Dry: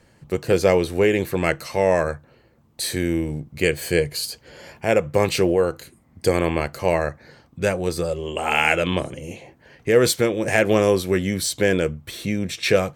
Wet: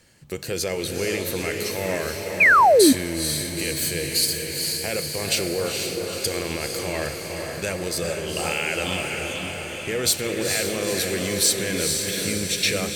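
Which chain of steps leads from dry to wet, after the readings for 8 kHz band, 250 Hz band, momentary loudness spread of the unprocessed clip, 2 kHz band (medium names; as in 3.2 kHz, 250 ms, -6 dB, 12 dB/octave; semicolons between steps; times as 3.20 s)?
+7.5 dB, -2.5 dB, 11 LU, +1.5 dB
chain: peaking EQ 940 Hz -3.5 dB 0.86 oct; peak limiter -14.5 dBFS, peak gain reduction 11 dB; treble shelf 2.1 kHz +12 dB; on a send: echo that smears into a reverb 465 ms, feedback 63%, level -3.5 dB; on the sum: Schroeder reverb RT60 3.1 s, combs from 28 ms, DRR 14.5 dB; painted sound fall, 2.40–2.93 s, 240–2600 Hz -9 dBFS; trim -4.5 dB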